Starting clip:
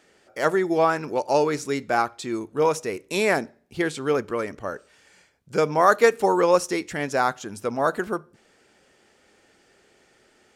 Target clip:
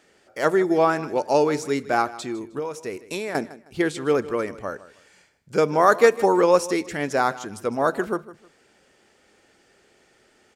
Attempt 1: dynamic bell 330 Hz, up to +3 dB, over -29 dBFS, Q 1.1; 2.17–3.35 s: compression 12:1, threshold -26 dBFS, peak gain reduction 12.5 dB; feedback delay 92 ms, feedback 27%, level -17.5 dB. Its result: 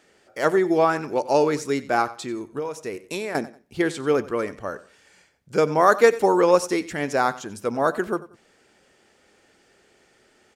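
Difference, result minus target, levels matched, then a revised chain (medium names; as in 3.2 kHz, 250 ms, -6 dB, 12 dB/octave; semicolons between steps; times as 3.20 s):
echo 64 ms early
dynamic bell 330 Hz, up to +3 dB, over -29 dBFS, Q 1.1; 2.17–3.35 s: compression 12:1, threshold -26 dBFS, peak gain reduction 12.5 dB; feedback delay 156 ms, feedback 27%, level -17.5 dB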